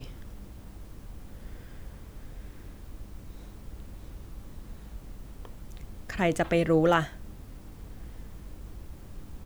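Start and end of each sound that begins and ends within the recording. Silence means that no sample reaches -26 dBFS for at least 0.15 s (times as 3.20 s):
6.10–7.03 s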